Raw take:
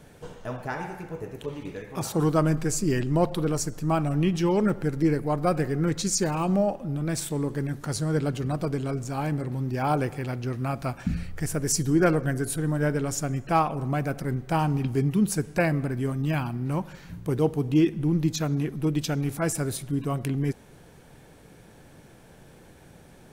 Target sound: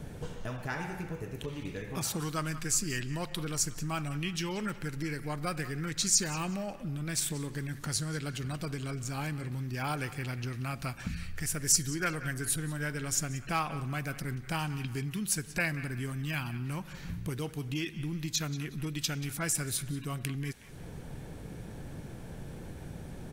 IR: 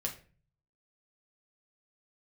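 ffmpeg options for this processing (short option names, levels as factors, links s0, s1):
-filter_complex "[0:a]lowshelf=f=270:g=10.5,acrossover=split=1500[s0][s1];[s0]acompressor=threshold=0.0141:ratio=6[s2];[s1]asplit=2[s3][s4];[s4]adelay=183,lowpass=f=3000:p=1,volume=0.266,asplit=2[s5][s6];[s6]adelay=183,lowpass=f=3000:p=1,volume=0.5,asplit=2[s7][s8];[s8]adelay=183,lowpass=f=3000:p=1,volume=0.5,asplit=2[s9][s10];[s10]adelay=183,lowpass=f=3000:p=1,volume=0.5,asplit=2[s11][s12];[s12]adelay=183,lowpass=f=3000:p=1,volume=0.5[s13];[s3][s5][s7][s9][s11][s13]amix=inputs=6:normalize=0[s14];[s2][s14]amix=inputs=2:normalize=0,volume=1.19"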